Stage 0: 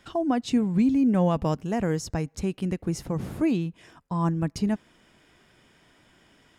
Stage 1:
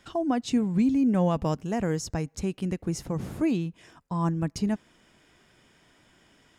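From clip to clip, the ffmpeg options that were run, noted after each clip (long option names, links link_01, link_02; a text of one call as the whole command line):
ffmpeg -i in.wav -af "equalizer=frequency=6700:width_type=o:width=0.77:gain=3,volume=-1.5dB" out.wav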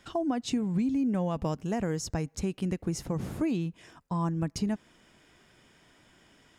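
ffmpeg -i in.wav -af "acompressor=threshold=-25dB:ratio=6" out.wav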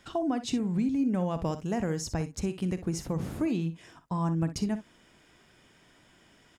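ffmpeg -i in.wav -af "aecho=1:1:43|61:0.15|0.224" out.wav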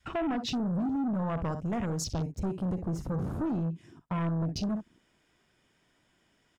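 ffmpeg -i in.wav -af "adynamicequalizer=threshold=0.00794:dfrequency=380:dqfactor=0.84:tfrequency=380:tqfactor=0.84:attack=5:release=100:ratio=0.375:range=3:mode=cutabove:tftype=bell,asoftclip=type=tanh:threshold=-34.5dB,afwtdn=0.00398,volume=7dB" out.wav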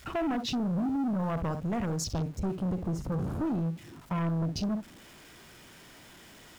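ffmpeg -i in.wav -af "aeval=exprs='val(0)+0.5*0.00422*sgn(val(0))':channel_layout=same" out.wav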